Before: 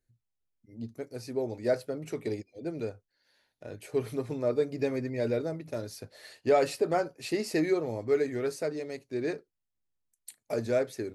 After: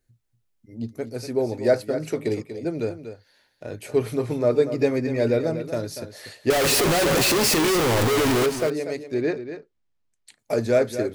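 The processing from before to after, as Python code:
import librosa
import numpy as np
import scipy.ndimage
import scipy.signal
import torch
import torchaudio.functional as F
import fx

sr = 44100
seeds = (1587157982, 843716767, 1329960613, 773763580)

y = fx.clip_1bit(x, sr, at=(6.5, 8.46))
y = fx.air_absorb(y, sr, metres=110.0, at=(9.14, 10.39))
y = y + 10.0 ** (-10.5 / 20.0) * np.pad(y, (int(240 * sr / 1000.0), 0))[:len(y)]
y = y * 10.0 ** (8.0 / 20.0)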